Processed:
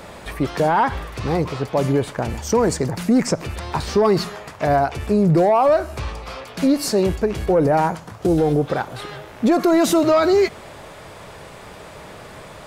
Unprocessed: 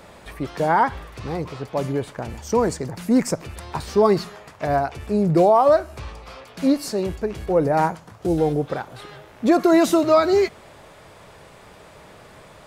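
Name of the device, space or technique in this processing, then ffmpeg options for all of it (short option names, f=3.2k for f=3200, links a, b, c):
soft clipper into limiter: -filter_complex "[0:a]asoftclip=type=tanh:threshold=-8.5dB,alimiter=limit=-16.5dB:level=0:latency=1:release=87,asettb=1/sr,asplit=3[a][b][c];[a]atrim=end=3.034[d];[b]atrim=start=3.03:end=4.02,asetpts=PTS-STARTPTS,afade=t=in:d=0.004:c=qsin,afade=t=out:st=0.986:d=0.004:c=qsin,acrossover=split=7200[e][f];[f]acompressor=threshold=-51dB:ratio=4:attack=1:release=60[g];[e][g]amix=inputs=2:normalize=0[h];[c]atrim=start=4.016[i];[d][h]acrossfade=d=0.004:c1=hsin:c2=qsin[j];[j][i]acrossfade=d=0.004:c1=qsin:c2=hsin,volume=7dB"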